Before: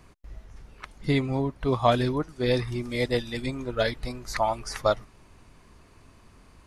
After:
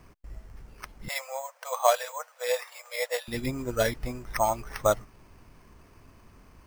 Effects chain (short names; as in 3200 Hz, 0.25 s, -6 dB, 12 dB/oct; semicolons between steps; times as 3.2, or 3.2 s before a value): careless resampling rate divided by 6×, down filtered, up hold; 1.08–3.28 brick-wall FIR high-pass 480 Hz